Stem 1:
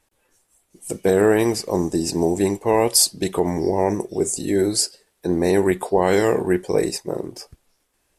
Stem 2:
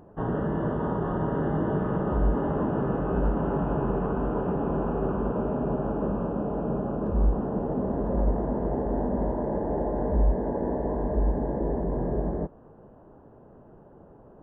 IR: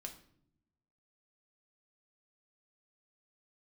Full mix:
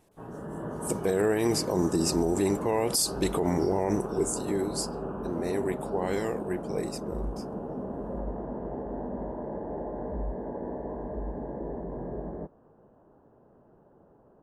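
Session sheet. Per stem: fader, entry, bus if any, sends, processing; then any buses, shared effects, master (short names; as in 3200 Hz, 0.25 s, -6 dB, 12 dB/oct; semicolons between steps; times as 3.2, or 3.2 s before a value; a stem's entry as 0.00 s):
3.94 s -2 dB -> 4.71 s -13 dB, 0.00 s, no send, dry
-13.5 dB, 0.00 s, no send, low shelf 110 Hz -7 dB; AGC gain up to 7 dB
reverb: off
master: limiter -16 dBFS, peak gain reduction 10 dB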